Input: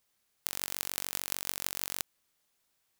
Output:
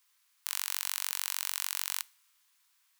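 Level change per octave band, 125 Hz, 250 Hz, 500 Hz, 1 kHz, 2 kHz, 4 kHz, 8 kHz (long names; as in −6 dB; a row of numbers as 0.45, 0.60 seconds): below −40 dB, below −40 dB, below −20 dB, +0.5 dB, +2.0 dB, +2.5 dB, +1.5 dB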